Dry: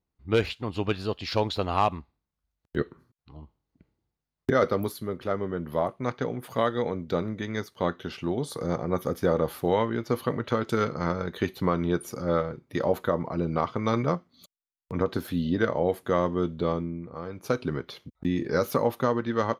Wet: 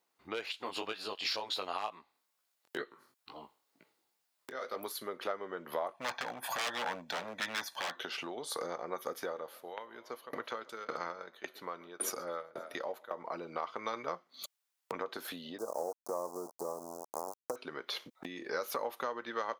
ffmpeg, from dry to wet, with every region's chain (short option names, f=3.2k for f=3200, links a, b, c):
-filter_complex "[0:a]asettb=1/sr,asplit=3[a][b][c];[a]atrim=end=0.524[d];[b]atrim=start=0.52:end=4.76,asetpts=PTS-STARTPTS,afade=t=in:d=0.004:c=qsin,afade=t=out:st=4.236:d=0.004:c=qsin,highshelf=f=4.3k:g=7,bandreject=f=6.1k:w=21,flanger=delay=17:depth=5.9:speed=2.1[e];[c]atrim=start=4.756[f];[d][e]acrossfade=d=0.004:c1=hsin:c2=qsin[g];[g][f]acrossfade=d=0.004:c1=qsin:c2=hsin,asettb=1/sr,asplit=3[h][i][j];[h]atrim=end=5.944[k];[i]atrim=start=5.94:end=7.96,asetpts=PTS-STARTPTS,afade=t=in:d=0.004:c=qsin,afade=t=out:st=2.016:d=0.004:c=qsin,lowshelf=f=78:g=-2.5,aecho=1:1:1.2:0.87,atrim=end_sample=89082,aeval=exprs='0.0473*(abs(mod(val(0)/0.0473+3,4)-2)-1)':c=same[l];[j]atrim=start=7.956[m];[k][l]acrossfade=d=0.004:c1=hsin:c2=qsin[n];[n][m]acrossfade=d=0.004:c1=qsin:c2=hsin,asettb=1/sr,asplit=3[o][p][q];[o]atrim=end=9.224[r];[p]atrim=start=9.22:end=13.17,asetpts=PTS-STARTPTS,afade=t=in:d=0.004:c=qsin,afade=t=out:st=3.946:d=0.004:c=qsin,asplit=6[s][t][u][v][w][x];[t]adelay=132,afreqshift=33,volume=-21dB[y];[u]adelay=264,afreqshift=66,volume=-25.7dB[z];[v]adelay=396,afreqshift=99,volume=-30.5dB[aa];[w]adelay=528,afreqshift=132,volume=-35.2dB[ab];[x]adelay=660,afreqshift=165,volume=-39.9dB[ac];[s][y][z][aa][ab][ac]amix=inputs=6:normalize=0,atrim=end_sample=174195,aeval=exprs='val(0)*pow(10,-31*if(lt(mod(1.8*n/s,1),2*abs(1.8)/1000),1-mod(1.8*n/s,1)/(2*abs(1.8)/1000),(mod(1.8*n/s,1)-2*abs(1.8)/1000)/(1-2*abs(1.8)/1000))/20)':c=same[ad];[q]atrim=start=13.166[ae];[r][ad]acrossfade=d=0.004:c1=hsin:c2=qsin[af];[af][ae]acrossfade=d=0.004:c1=qsin:c2=hsin,asettb=1/sr,asplit=3[ag][ah][ai];[ag]atrim=end=15.584[aj];[ah]atrim=start=15.58:end=17.56,asetpts=PTS-STARTPTS,afade=t=in:d=0.004:c=qsin,afade=t=out:st=1.976:d=0.004:c=qsin,aeval=exprs='val(0)*gte(abs(val(0)),0.0299)':c=same,asuperstop=centerf=2500:order=8:qfactor=0.52[ak];[ai]atrim=start=17.556[al];[aj][ak]acrossfade=d=0.004:c1=hsin:c2=qsin[am];[am][al]acrossfade=d=0.004:c1=qsin:c2=hsin,acompressor=threshold=-39dB:ratio=10,highpass=610,alimiter=level_in=10dB:limit=-24dB:level=0:latency=1:release=337,volume=-10dB,volume=11dB"